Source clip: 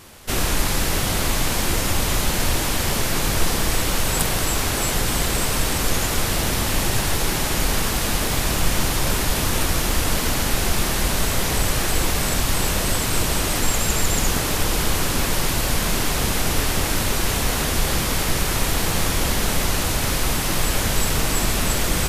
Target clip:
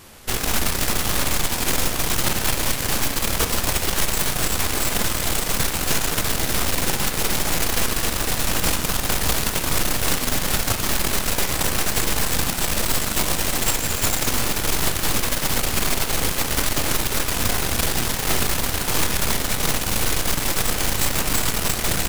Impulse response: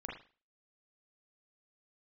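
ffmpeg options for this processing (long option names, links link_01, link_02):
-filter_complex "[0:a]aeval=exprs='0.794*(cos(1*acos(clip(val(0)/0.794,-1,1)))-cos(1*PI/2))+0.251*(cos(6*acos(clip(val(0)/0.794,-1,1)))-cos(6*PI/2))':channel_layout=same,aeval=exprs='0.237*(abs(mod(val(0)/0.237+3,4)-2)-1)':channel_layout=same,asplit=2[link_01][link_02];[1:a]atrim=start_sample=2205,highshelf=frequency=12000:gain=8.5[link_03];[link_02][link_03]afir=irnorm=-1:irlink=0,volume=-6dB[link_04];[link_01][link_04]amix=inputs=2:normalize=0,volume=-3dB"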